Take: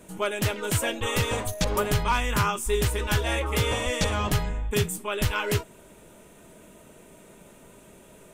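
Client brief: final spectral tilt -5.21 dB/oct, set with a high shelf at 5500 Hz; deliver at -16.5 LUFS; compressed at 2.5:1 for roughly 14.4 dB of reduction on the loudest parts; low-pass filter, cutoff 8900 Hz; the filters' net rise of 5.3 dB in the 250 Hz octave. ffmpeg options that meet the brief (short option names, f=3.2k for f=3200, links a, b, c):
-af "lowpass=8.9k,equalizer=f=250:t=o:g=7.5,highshelf=f=5.5k:g=-4.5,acompressor=threshold=-41dB:ratio=2.5,volume=23dB"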